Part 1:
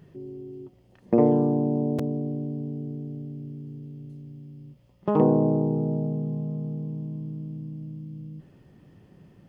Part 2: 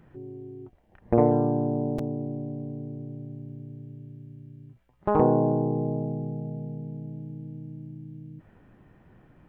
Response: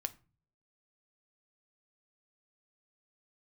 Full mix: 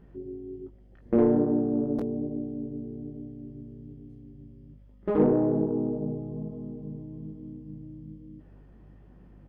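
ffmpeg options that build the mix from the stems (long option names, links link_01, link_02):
-filter_complex "[0:a]lowshelf=frequency=110:gain=-11.5,aeval=exprs='val(0)+0.00282*(sin(2*PI*50*n/s)+sin(2*PI*2*50*n/s)/2+sin(2*PI*3*50*n/s)/3+sin(2*PI*4*50*n/s)/4+sin(2*PI*5*50*n/s)/5)':channel_layout=same,flanger=delay=16:depth=6.5:speed=1.2,volume=0.5dB[link_01];[1:a]asoftclip=type=tanh:threshold=-17dB,adelay=1.2,volume=-5dB[link_02];[link_01][link_02]amix=inputs=2:normalize=0,highshelf=frequency=2300:gain=-12"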